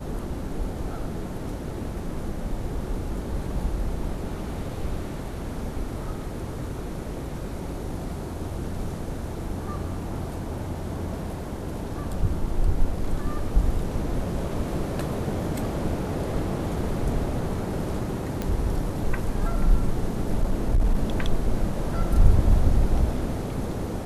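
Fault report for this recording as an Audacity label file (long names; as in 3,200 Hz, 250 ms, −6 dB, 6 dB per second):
18.420000	18.420000	click −15 dBFS
20.300000	21.030000	clipping −15.5 dBFS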